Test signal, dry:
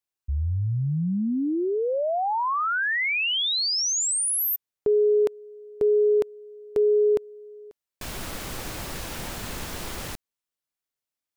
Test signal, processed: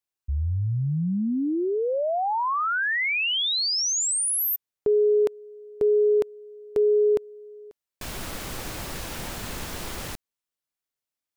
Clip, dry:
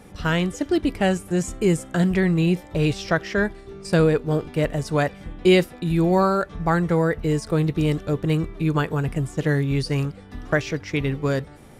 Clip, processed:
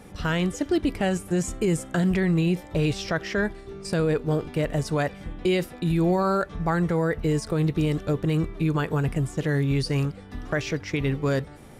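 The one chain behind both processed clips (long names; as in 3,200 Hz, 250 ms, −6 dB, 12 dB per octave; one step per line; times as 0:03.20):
brickwall limiter −14.5 dBFS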